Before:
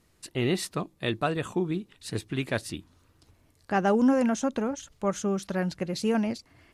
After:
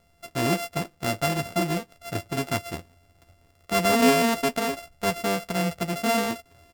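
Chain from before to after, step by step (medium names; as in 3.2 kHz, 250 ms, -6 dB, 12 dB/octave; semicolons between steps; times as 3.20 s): sorted samples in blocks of 64 samples; doubling 12 ms -9 dB; trim +2 dB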